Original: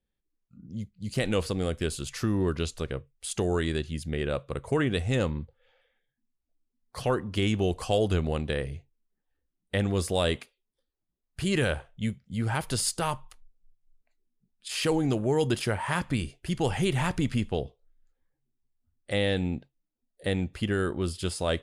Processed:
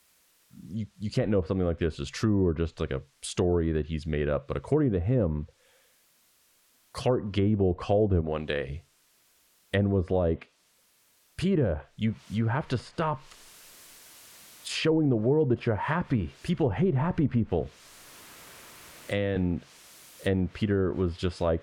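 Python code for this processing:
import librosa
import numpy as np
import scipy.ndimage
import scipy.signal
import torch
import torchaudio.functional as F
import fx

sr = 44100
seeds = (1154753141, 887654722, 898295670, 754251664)

y = fx.low_shelf(x, sr, hz=170.0, db=-12.0, at=(8.21, 8.69))
y = fx.noise_floor_step(y, sr, seeds[0], at_s=12.06, before_db=-66, after_db=-52, tilt_db=0.0)
y = fx.band_squash(y, sr, depth_pct=40, at=(17.6, 19.36))
y = fx.env_lowpass_down(y, sr, base_hz=650.0, full_db=-21.5)
y = fx.highpass(y, sr, hz=49.0, slope=6)
y = fx.notch(y, sr, hz=800.0, q=12.0)
y = y * librosa.db_to_amplitude(2.5)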